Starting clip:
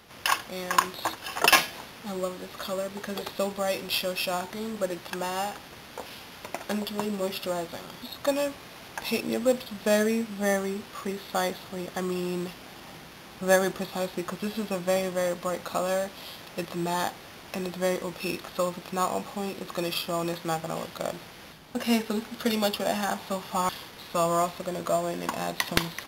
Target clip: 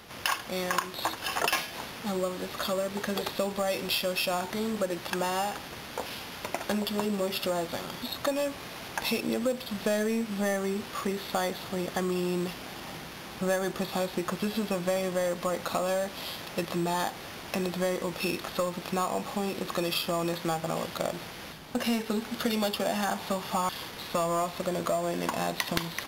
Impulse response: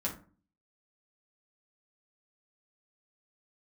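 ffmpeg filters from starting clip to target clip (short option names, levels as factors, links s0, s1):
-filter_complex "[0:a]asplit=2[s0][s1];[s1]volume=16.8,asoftclip=hard,volume=0.0596,volume=0.631[s2];[s0][s2]amix=inputs=2:normalize=0,acompressor=threshold=0.0501:ratio=4"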